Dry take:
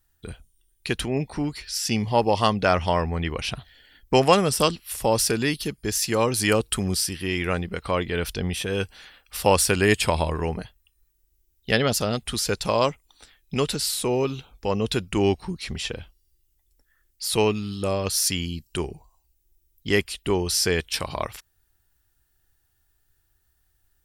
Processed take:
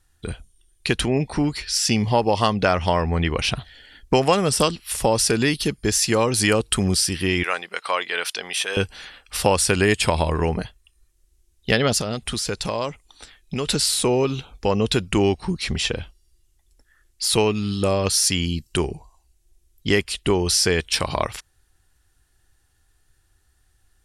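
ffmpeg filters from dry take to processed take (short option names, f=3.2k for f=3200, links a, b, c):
-filter_complex "[0:a]asettb=1/sr,asplit=3[a][b][c];[a]atrim=end=7.434[d];[b]atrim=start=7.43:end=8.77,asetpts=PTS-STARTPTS,afade=t=in:d=0.004:c=qsin,afade=t=out:st=1.336:d=0.004:c=qsin,highpass=820[e];[c]atrim=start=8.766[f];[d][e]acrossfade=d=0.004:c1=hsin:c2=qsin[g];[g][f]acrossfade=d=0.004:c1=qsin:c2=hsin,asettb=1/sr,asplit=3[h][i][j];[h]atrim=end=12.014[k];[i]atrim=start=12.01:end=13.67,asetpts=PTS-STARTPTS,afade=t=in:d=0.004:c=qsin,afade=t=out:st=1.656:d=0.004:c=qsin,acompressor=threshold=-31dB:ratio=3:attack=3.2:release=140:knee=1:detection=peak[l];[j]atrim=start=13.666[m];[k][l]acrossfade=d=0.004:c1=hsin:c2=qsin[n];[n][m]acrossfade=d=0.004:c1=qsin:c2=hsin,lowpass=f=11k:w=0.5412,lowpass=f=11k:w=1.3066,acompressor=threshold=-24dB:ratio=2.5,volume=7dB"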